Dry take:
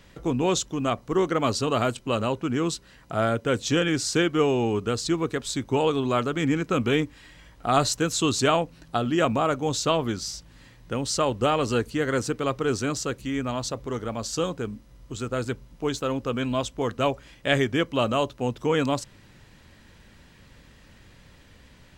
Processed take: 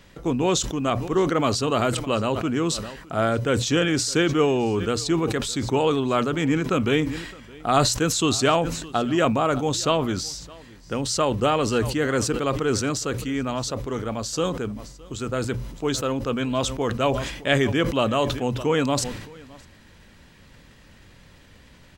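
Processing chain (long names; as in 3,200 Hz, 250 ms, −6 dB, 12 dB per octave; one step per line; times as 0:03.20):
mains-hum notches 60/120 Hz
single-tap delay 614 ms −23 dB
level that may fall only so fast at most 60 dB per second
level +1.5 dB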